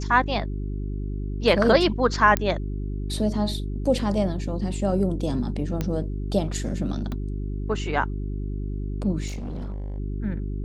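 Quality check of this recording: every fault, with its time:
hum 50 Hz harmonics 8 -29 dBFS
2.37 pop -8 dBFS
5.81 pop -13 dBFS
7.12 pop -20 dBFS
9.27–9.98 clipped -28.5 dBFS

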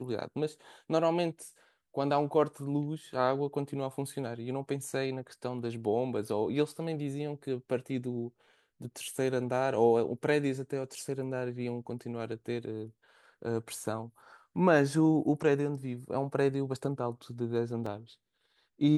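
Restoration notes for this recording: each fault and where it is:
17.86 gap 3.9 ms

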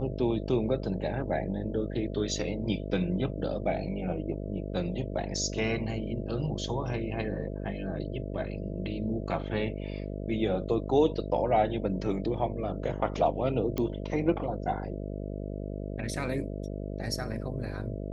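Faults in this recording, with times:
buzz 50 Hz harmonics 13 -36 dBFS
13.78 pop -17 dBFS

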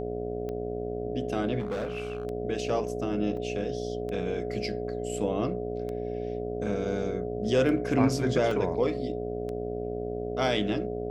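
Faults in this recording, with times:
buzz 60 Hz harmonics 12 -36 dBFS
tick 33 1/3 rpm -25 dBFS
tone 420 Hz -35 dBFS
1.59–2.25 clipped -27.5 dBFS
3.37 gap 2.7 ms
8.51 gap 2.7 ms

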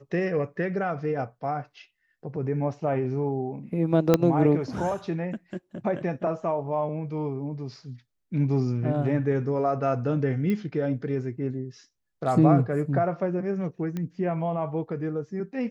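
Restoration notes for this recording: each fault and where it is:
4.14 pop -6 dBFS
10.5 pop -18 dBFS
13.97 pop -20 dBFS

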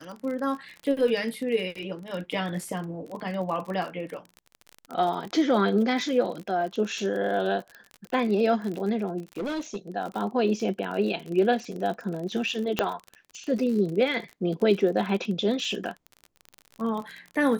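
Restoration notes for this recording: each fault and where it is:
crackle 40/s -32 dBFS
9.36–9.76 clipped -27 dBFS
12.79 pop -8 dBFS

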